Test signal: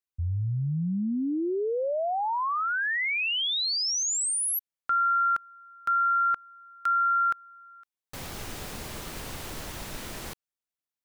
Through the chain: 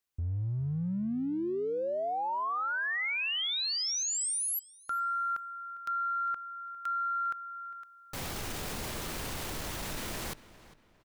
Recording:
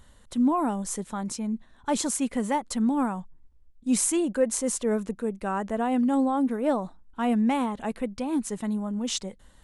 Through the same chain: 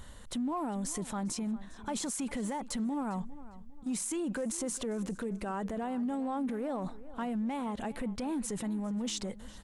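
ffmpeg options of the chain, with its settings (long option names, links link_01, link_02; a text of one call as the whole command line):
ffmpeg -i in.wav -filter_complex "[0:a]acompressor=threshold=-36dB:ratio=10:attack=0.15:release=36:knee=6:detection=peak,asplit=2[link_01][link_02];[link_02]adelay=403,lowpass=frequency=4000:poles=1,volume=-17dB,asplit=2[link_03][link_04];[link_04]adelay=403,lowpass=frequency=4000:poles=1,volume=0.35,asplit=2[link_05][link_06];[link_06]adelay=403,lowpass=frequency=4000:poles=1,volume=0.35[link_07];[link_03][link_05][link_07]amix=inputs=3:normalize=0[link_08];[link_01][link_08]amix=inputs=2:normalize=0,volume=5.5dB" out.wav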